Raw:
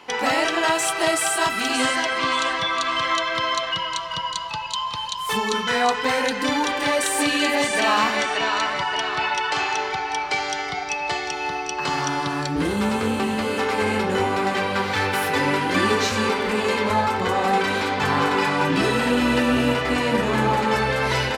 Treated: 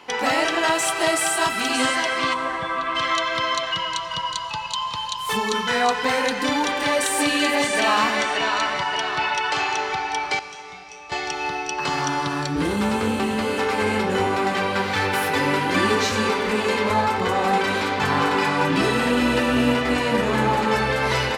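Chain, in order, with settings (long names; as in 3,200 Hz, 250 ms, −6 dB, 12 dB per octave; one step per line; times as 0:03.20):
0:02.33–0:02.94: low-pass filter 1,200 Hz → 2,100 Hz 12 dB per octave
0:10.39–0:11.12: tuned comb filter 62 Hz, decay 0.59 s, harmonics odd, mix 90%
convolution reverb RT60 2.9 s, pre-delay 85 ms, DRR 13.5 dB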